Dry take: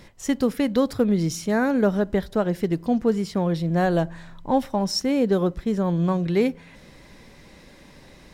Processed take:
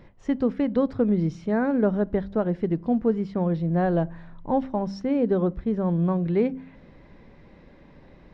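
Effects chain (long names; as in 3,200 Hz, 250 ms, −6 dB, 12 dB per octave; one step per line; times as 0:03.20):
head-to-tape spacing loss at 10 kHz 38 dB
hum removal 65.41 Hz, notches 4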